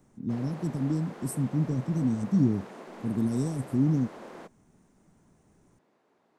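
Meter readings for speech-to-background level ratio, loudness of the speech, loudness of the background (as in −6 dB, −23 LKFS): 16.0 dB, −29.0 LKFS, −45.0 LKFS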